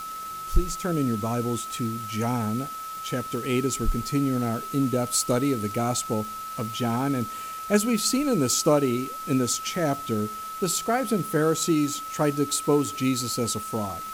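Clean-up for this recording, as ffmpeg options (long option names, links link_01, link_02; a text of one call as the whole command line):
ffmpeg -i in.wav -af "adeclick=threshold=4,bandreject=frequency=1300:width=30,afwtdn=0.0063" out.wav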